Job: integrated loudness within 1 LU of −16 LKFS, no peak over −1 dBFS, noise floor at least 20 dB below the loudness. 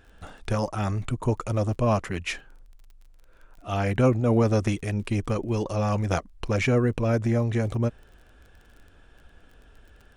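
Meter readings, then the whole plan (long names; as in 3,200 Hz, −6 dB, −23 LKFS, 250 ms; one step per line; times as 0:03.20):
crackle rate 28 per second; integrated loudness −26.0 LKFS; sample peak −7.5 dBFS; target loudness −16.0 LKFS
→ click removal
level +10 dB
brickwall limiter −1 dBFS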